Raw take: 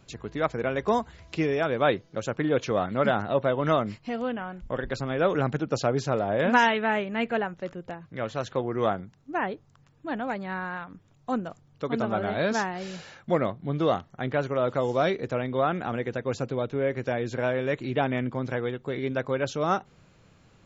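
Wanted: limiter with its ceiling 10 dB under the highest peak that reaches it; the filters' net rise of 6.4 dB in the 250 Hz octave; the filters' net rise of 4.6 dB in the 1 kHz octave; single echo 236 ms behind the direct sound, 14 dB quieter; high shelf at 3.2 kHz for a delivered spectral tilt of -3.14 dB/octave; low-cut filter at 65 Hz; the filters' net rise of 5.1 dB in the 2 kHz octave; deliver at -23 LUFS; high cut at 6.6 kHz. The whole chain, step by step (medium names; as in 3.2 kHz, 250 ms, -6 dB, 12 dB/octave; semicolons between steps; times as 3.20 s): high-pass 65 Hz; low-pass 6.6 kHz; peaking EQ 250 Hz +7.5 dB; peaking EQ 1 kHz +4.5 dB; peaking EQ 2 kHz +6 dB; treble shelf 3.2 kHz -4 dB; peak limiter -13 dBFS; delay 236 ms -14 dB; trim +3 dB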